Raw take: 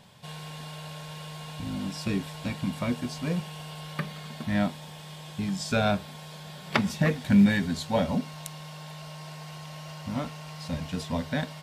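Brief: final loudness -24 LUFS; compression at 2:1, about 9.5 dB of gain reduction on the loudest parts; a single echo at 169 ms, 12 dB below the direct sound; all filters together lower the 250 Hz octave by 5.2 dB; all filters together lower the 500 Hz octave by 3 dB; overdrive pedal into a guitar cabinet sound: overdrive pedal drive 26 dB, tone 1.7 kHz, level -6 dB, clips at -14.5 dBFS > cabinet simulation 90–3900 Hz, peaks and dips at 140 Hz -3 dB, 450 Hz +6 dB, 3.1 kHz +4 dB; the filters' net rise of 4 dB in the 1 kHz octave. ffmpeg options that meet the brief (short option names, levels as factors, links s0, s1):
-filter_complex "[0:a]equalizer=f=250:t=o:g=-5.5,equalizer=f=500:t=o:g=-8,equalizer=f=1000:t=o:g=8,acompressor=threshold=0.0158:ratio=2,aecho=1:1:169:0.251,asplit=2[s0][s1];[s1]highpass=f=720:p=1,volume=20,asoftclip=type=tanh:threshold=0.188[s2];[s0][s2]amix=inputs=2:normalize=0,lowpass=f=1700:p=1,volume=0.501,highpass=90,equalizer=f=140:t=q:w=4:g=-3,equalizer=f=450:t=q:w=4:g=6,equalizer=f=3100:t=q:w=4:g=4,lowpass=f=3900:w=0.5412,lowpass=f=3900:w=1.3066,volume=1.41"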